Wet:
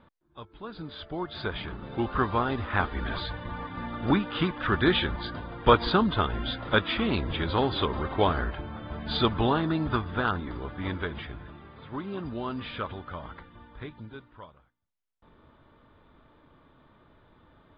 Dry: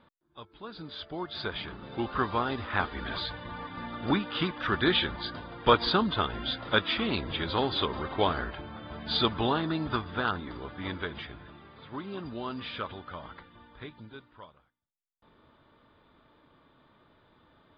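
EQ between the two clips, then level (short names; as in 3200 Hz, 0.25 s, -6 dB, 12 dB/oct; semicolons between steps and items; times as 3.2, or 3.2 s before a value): air absorption 200 m; low shelf 72 Hz +9.5 dB; +3.0 dB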